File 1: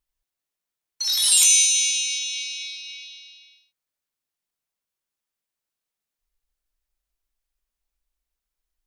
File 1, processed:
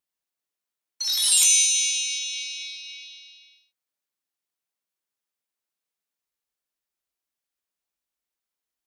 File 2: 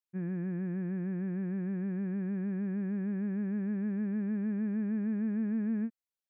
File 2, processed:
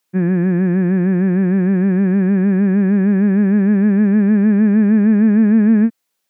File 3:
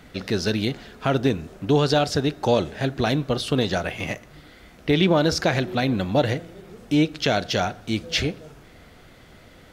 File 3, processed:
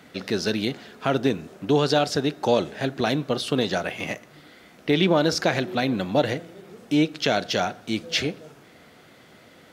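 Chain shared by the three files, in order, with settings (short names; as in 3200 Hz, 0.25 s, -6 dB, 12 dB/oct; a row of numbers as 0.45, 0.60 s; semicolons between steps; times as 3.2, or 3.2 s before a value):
HPF 160 Hz 12 dB/oct; normalise peaks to -6 dBFS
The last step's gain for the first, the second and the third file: -2.0, +21.5, -0.5 dB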